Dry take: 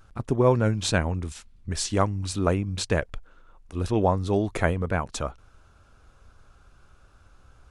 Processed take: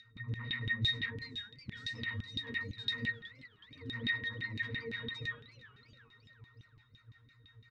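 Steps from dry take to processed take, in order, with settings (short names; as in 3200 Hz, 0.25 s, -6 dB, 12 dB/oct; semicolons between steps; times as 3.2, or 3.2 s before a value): comb 6.5 ms, depth 69%; reverb RT60 0.35 s, pre-delay 62 ms, DRR 0.5 dB; sine folder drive 18 dB, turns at -3.5 dBFS; EQ curve 130 Hz 0 dB, 430 Hz -17 dB, 870 Hz -12 dB, 1300 Hz +1 dB, 6100 Hz +10 dB; upward compressor, threshold -11 dBFS; notch 920 Hz, Q 12; octave resonator A#, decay 0.25 s; LFO band-pass saw down 5.9 Hz 260–3400 Hz; band shelf 790 Hz -11 dB; warbling echo 0.366 s, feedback 47%, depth 203 cents, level -19 dB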